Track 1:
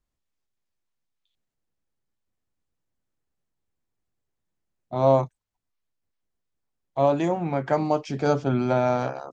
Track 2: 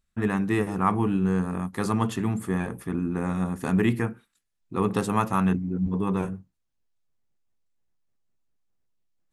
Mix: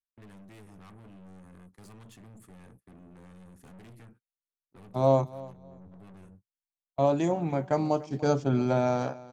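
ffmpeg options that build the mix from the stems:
-filter_complex "[0:a]aemphasis=mode=production:type=75fm,agate=range=0.0224:threshold=0.0355:ratio=16:detection=peak,tiltshelf=f=810:g=4,volume=0.596,asplit=3[s0][s1][s2];[s1]volume=0.106[s3];[1:a]agate=range=0.0282:threshold=0.0178:ratio=16:detection=peak,acrossover=split=150|3000[s4][s5][s6];[s5]acompressor=threshold=0.00708:ratio=1.5[s7];[s4][s7][s6]amix=inputs=3:normalize=0,aeval=exprs='(tanh(63.1*val(0)+0.4)-tanh(0.4))/63.1':c=same,volume=0.237[s8];[s2]apad=whole_len=411230[s9];[s8][s9]sidechaincompress=threshold=0.0355:ratio=8:attack=16:release=528[s10];[s3]aecho=0:1:293|586|879|1172:1|0.22|0.0484|0.0106[s11];[s0][s10][s11]amix=inputs=3:normalize=0"

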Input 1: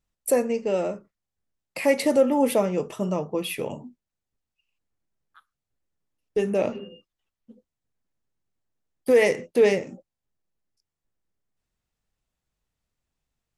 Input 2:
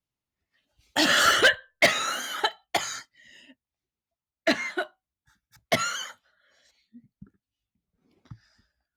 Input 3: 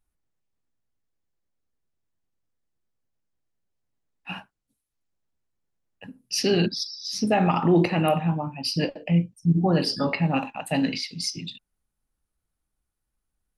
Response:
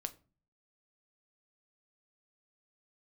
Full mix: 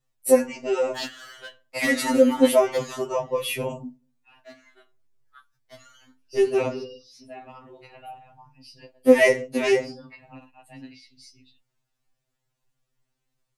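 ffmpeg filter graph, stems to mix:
-filter_complex "[0:a]volume=1.26,asplit=3[s0][s1][s2];[s1]volume=0.596[s3];[1:a]volume=0.398,asplit=2[s4][s5];[s5]volume=0.251[s6];[2:a]adynamicequalizer=threshold=0.0141:dfrequency=290:dqfactor=2.6:tfrequency=290:tqfactor=2.6:attack=5:release=100:ratio=0.375:range=2.5:mode=cutabove:tftype=bell,volume=0.126,asplit=2[s7][s8];[s8]volume=0.0668[s9];[s2]apad=whole_len=395351[s10];[s4][s10]sidechaingate=range=0.00447:threshold=0.00794:ratio=16:detection=peak[s11];[3:a]atrim=start_sample=2205[s12];[s3][s6][s9]amix=inputs=3:normalize=0[s13];[s13][s12]afir=irnorm=-1:irlink=0[s14];[s0][s11][s7][s14]amix=inputs=4:normalize=0,afftfilt=real='re*2.45*eq(mod(b,6),0)':imag='im*2.45*eq(mod(b,6),0)':win_size=2048:overlap=0.75"

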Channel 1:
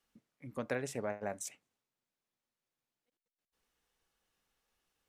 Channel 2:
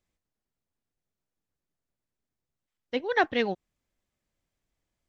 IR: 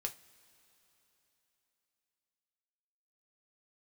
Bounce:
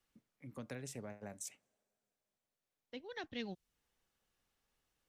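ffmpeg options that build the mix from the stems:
-filter_complex "[0:a]volume=0.668,asplit=3[s0][s1][s2];[s1]volume=0.0794[s3];[1:a]volume=0.473[s4];[s2]apad=whole_len=224390[s5];[s4][s5]sidechaincompress=threshold=0.00126:ratio=4:attack=5.5:release=1460[s6];[2:a]atrim=start_sample=2205[s7];[s3][s7]afir=irnorm=-1:irlink=0[s8];[s0][s6][s8]amix=inputs=3:normalize=0,acrossover=split=250|3000[s9][s10][s11];[s10]acompressor=threshold=0.00224:ratio=2.5[s12];[s9][s12][s11]amix=inputs=3:normalize=0"

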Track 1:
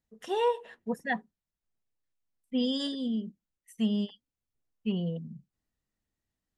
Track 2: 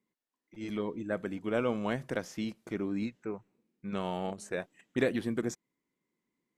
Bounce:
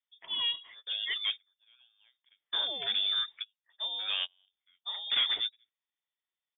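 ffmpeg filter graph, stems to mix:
-filter_complex "[0:a]volume=0.708,asplit=2[s0][s1];[1:a]dynaudnorm=f=420:g=5:m=2.82,adelay=150,volume=0.891,afade=t=in:st=0.78:d=0.3:silence=0.281838[s2];[s1]apad=whole_len=296440[s3];[s2][s3]sidechaingate=range=0.00891:threshold=0.00141:ratio=16:detection=peak[s4];[s0][s4]amix=inputs=2:normalize=0,highpass=270,asoftclip=type=tanh:threshold=0.0668,lowpass=f=3200:t=q:w=0.5098,lowpass=f=3200:t=q:w=0.6013,lowpass=f=3200:t=q:w=0.9,lowpass=f=3200:t=q:w=2.563,afreqshift=-3800"

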